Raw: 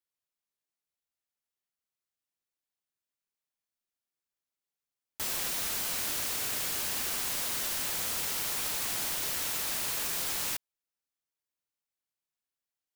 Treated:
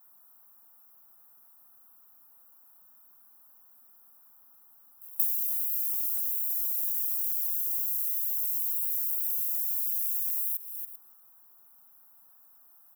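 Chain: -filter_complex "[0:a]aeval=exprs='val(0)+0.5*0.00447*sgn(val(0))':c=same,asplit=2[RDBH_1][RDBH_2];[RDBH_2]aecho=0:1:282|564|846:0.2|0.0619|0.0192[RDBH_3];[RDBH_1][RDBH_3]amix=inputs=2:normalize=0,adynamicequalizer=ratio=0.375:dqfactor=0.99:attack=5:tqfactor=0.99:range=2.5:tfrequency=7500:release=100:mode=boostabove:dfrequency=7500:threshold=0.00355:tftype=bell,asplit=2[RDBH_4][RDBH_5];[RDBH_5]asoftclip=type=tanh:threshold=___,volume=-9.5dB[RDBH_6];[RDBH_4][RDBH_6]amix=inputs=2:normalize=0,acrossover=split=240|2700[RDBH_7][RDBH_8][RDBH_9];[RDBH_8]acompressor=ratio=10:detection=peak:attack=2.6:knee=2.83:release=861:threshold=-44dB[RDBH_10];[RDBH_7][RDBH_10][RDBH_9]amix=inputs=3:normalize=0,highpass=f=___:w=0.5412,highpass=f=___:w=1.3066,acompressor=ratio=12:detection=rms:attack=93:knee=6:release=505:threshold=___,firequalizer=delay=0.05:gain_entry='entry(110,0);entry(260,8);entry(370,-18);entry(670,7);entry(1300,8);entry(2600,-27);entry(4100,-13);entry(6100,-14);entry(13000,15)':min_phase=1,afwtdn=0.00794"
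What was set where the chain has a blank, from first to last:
-29.5dB, 180, 180, -38dB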